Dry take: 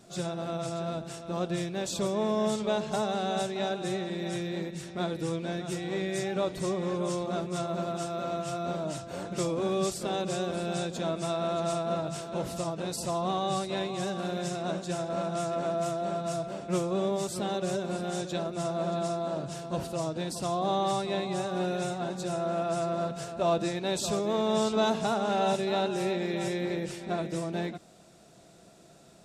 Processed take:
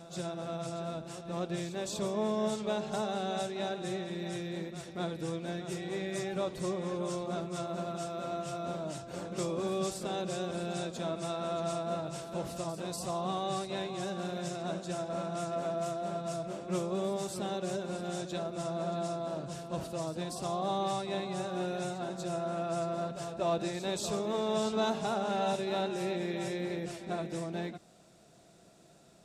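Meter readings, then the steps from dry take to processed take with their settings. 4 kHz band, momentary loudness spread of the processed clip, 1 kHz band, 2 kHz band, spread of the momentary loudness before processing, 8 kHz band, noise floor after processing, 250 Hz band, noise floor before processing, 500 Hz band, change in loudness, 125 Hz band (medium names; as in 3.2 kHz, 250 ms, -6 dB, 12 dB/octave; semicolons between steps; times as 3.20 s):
-4.5 dB, 6 LU, -4.0 dB, -4.5 dB, 6 LU, -4.5 dB, -58 dBFS, -4.5 dB, -54 dBFS, -4.0 dB, -4.0 dB, -4.0 dB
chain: vibrato 1.7 Hz 7.7 cents; pre-echo 242 ms -12.5 dB; trim -4.5 dB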